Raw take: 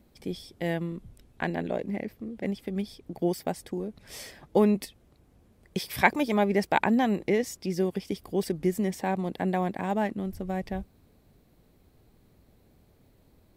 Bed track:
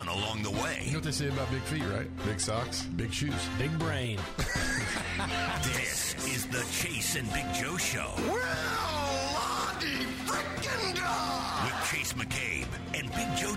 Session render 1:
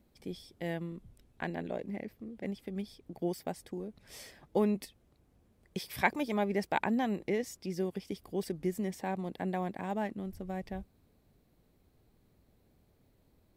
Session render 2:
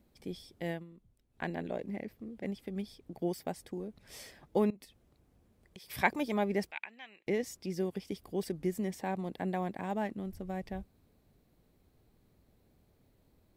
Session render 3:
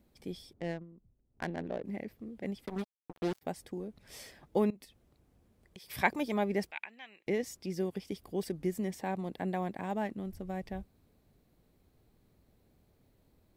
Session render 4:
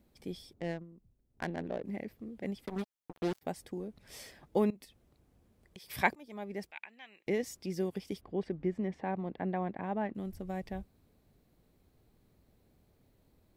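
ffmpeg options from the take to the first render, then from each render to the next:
-af "volume=-7dB"
-filter_complex "[0:a]asettb=1/sr,asplit=3[a][b][c];[a]atrim=end=4.704[d];[b]atrim=start=4.7:end=5.9,asetpts=PTS-STARTPTS,afade=t=in:d=0.004:c=qsin,afade=t=out:st=1.196:d=0.004:c=qsin,acompressor=threshold=-50dB:ratio=4:attack=3.2:release=140:knee=1:detection=peak[e];[c]atrim=start=5.896[f];[d][e]acrossfade=d=0.004:c1=hsin:c2=qsin[g];[g][f]acrossfade=d=0.004:c1=qsin:c2=hsin,asettb=1/sr,asplit=3[h][i][j];[h]atrim=end=6.714[k];[i]atrim=start=6.71:end=7.27,asetpts=PTS-STARTPTS,afade=t=in:d=0.004:c=qsin,afade=t=out:st=0.556:d=0.004:c=qsin,bandpass=f=2.5k:t=q:w=3.4[l];[j]atrim=start=7.266[m];[k][l]acrossfade=d=0.004:c1=hsin:c2=qsin[n];[n][m]acrossfade=d=0.004:c1=qsin:c2=hsin,asplit=3[o][p][q];[o]atrim=end=0.85,asetpts=PTS-STARTPTS,afade=t=out:st=0.7:d=0.15:silence=0.251189[r];[p]atrim=start=0.85:end=1.29,asetpts=PTS-STARTPTS,volume=-12dB[s];[q]atrim=start=1.29,asetpts=PTS-STARTPTS,afade=t=in:d=0.15:silence=0.251189[t];[r][s][t]concat=n=3:v=0:a=1"
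-filter_complex "[0:a]asettb=1/sr,asplit=3[a][b][c];[a]atrim=end=0.534[d];[b]atrim=start=0.53:end=1.85,asetpts=PTS-STARTPTS,afade=t=in:d=0.004:c=qsin,afade=t=out:st=1.316:d=0.004:c=qsin,adynamicsmooth=sensitivity=7.5:basefreq=880[e];[c]atrim=start=1.846[f];[d][e]acrossfade=d=0.004:c1=hsin:c2=qsin[g];[g][f]acrossfade=d=0.004:c1=qsin:c2=hsin,asplit=3[h][i][j];[h]afade=t=out:st=2.65:d=0.02[k];[i]acrusher=bits=5:mix=0:aa=0.5,afade=t=in:st=2.65:d=0.02,afade=t=out:st=3.41:d=0.02[l];[j]afade=t=in:st=3.41:d=0.02[m];[k][l][m]amix=inputs=3:normalize=0"
-filter_complex "[0:a]asettb=1/sr,asplit=3[a][b][c];[a]atrim=end=8.214[d];[b]atrim=start=8.21:end=10.15,asetpts=PTS-STARTPTS,afade=t=in:d=0.004:c=qsin,afade=t=out:st=1.936:d=0.004:c=qsin,lowpass=2.3k[e];[c]atrim=start=10.146[f];[d][e]acrossfade=d=0.004:c1=hsin:c2=qsin[g];[g][f]acrossfade=d=0.004:c1=qsin:c2=hsin,asplit=2[h][i];[h]atrim=end=6.15,asetpts=PTS-STARTPTS,afade=t=out:st=6.146:d=0.004:c=hsin:silence=0.0668344[j];[i]atrim=start=6.15,asetpts=PTS-STARTPTS,afade=t=in:d=1.17:silence=0.0668344[k];[j][k]concat=n=2:v=0:a=1"

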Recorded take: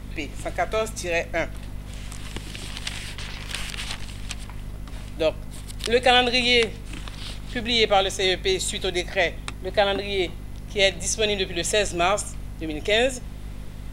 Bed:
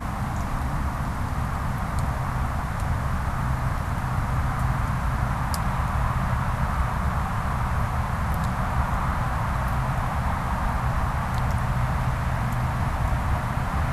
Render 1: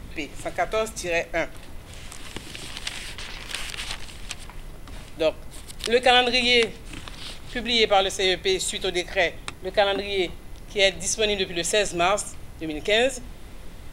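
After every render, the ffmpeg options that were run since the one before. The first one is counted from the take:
-af "bandreject=f=50:t=h:w=4,bandreject=f=100:t=h:w=4,bandreject=f=150:t=h:w=4,bandreject=f=200:t=h:w=4,bandreject=f=250:t=h:w=4"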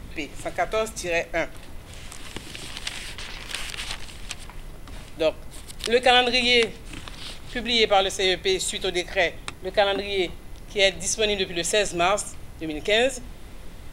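-af anull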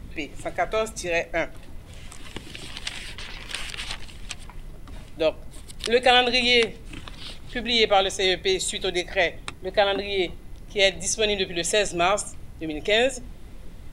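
-af "afftdn=nr=6:nf=-42"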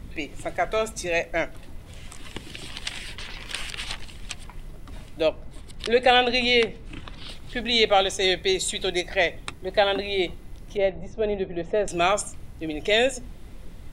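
-filter_complex "[0:a]asettb=1/sr,asplit=3[a][b][c];[a]atrim=end=5.284[d];[b]atrim=start=5.28:end=7.29,asetpts=PTS-STARTPTS,afade=t=in:d=0.004:c=qsin,afade=t=out:st=2.006:d=0.004:c=qsin,aemphasis=mode=reproduction:type=cd[e];[c]atrim=start=7.286[f];[d][e]acrossfade=d=0.004:c1=hsin:c2=qsin[g];[g][f]acrossfade=d=0.004:c1=qsin:c2=hsin,asettb=1/sr,asplit=3[h][i][j];[h]atrim=end=10.774[k];[i]atrim=start=10.77:end=11.88,asetpts=PTS-STARTPTS,afade=t=in:d=0.004:c=qsin,afade=t=out:st=1.106:d=0.004:c=qsin,lowpass=1.1k[l];[j]atrim=start=11.876[m];[k][l]acrossfade=d=0.004:c1=hsin:c2=qsin[n];[n][m]acrossfade=d=0.004:c1=qsin:c2=hsin"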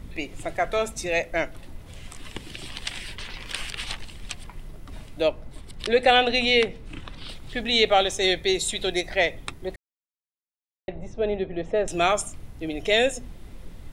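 -filter_complex "[0:a]asplit=3[a][b][c];[a]atrim=end=9.76,asetpts=PTS-STARTPTS,afade=t=out:st=9.756:d=0.004:c=hsin[d];[b]atrim=start=9.76:end=10.88,asetpts=PTS-STARTPTS,volume=0[e];[c]atrim=start=10.88,asetpts=PTS-STARTPTS,afade=t=in:d=0.004:c=hsin[f];[d][e][f]concat=n=3:v=0:a=1"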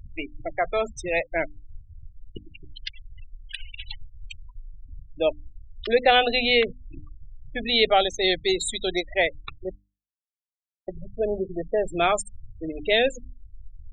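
-af "afftfilt=real='re*gte(hypot(re,im),0.0631)':imag='im*gte(hypot(re,im),0.0631)':win_size=1024:overlap=0.75,bandreject=f=50:t=h:w=6,bandreject=f=100:t=h:w=6,bandreject=f=150:t=h:w=6,bandreject=f=200:t=h:w=6,bandreject=f=250:t=h:w=6,bandreject=f=300:t=h:w=6"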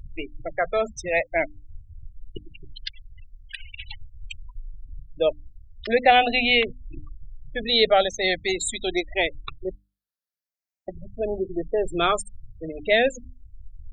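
-af "afftfilt=real='re*pow(10,8/40*sin(2*PI*(0.64*log(max(b,1)*sr/1024/100)/log(2)-(0.42)*(pts-256)/sr)))':imag='im*pow(10,8/40*sin(2*PI*(0.64*log(max(b,1)*sr/1024/100)/log(2)-(0.42)*(pts-256)/sr)))':win_size=1024:overlap=0.75"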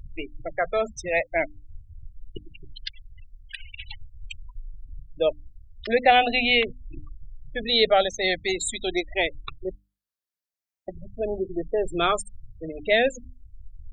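-af "volume=-1dB"

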